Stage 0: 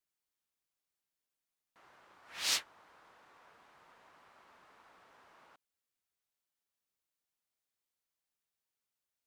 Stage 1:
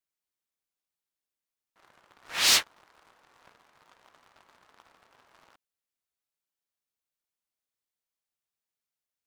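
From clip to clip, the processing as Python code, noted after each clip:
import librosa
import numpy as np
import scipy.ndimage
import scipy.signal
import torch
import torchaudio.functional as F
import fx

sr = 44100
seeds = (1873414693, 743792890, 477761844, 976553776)

y = fx.leveller(x, sr, passes=3)
y = y * librosa.db_to_amplitude(3.5)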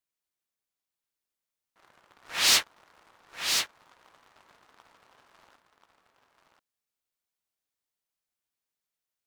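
y = x + 10.0 ** (-5.5 / 20.0) * np.pad(x, (int(1035 * sr / 1000.0), 0))[:len(x)]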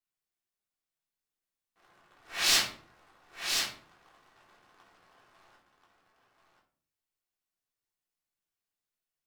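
y = fx.room_shoebox(x, sr, seeds[0], volume_m3=440.0, walls='furnished', distance_m=3.5)
y = y * librosa.db_to_amplitude(-8.0)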